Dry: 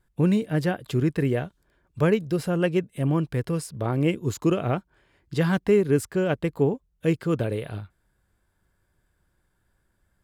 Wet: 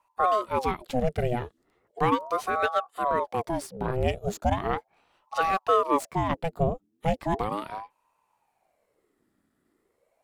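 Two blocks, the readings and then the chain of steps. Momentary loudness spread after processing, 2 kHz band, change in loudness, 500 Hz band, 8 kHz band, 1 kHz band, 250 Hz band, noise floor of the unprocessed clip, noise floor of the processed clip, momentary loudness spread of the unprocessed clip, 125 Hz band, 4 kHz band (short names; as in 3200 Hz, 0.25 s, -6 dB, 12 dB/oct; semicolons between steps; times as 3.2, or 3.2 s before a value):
9 LU, -0.5 dB, -2.5 dB, -3.0 dB, -3.5 dB, +10.5 dB, -9.0 dB, -71 dBFS, -75 dBFS, 8 LU, -8.0 dB, -1.0 dB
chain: tracing distortion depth 0.024 ms; ring modulator with a swept carrier 610 Hz, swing 60%, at 0.37 Hz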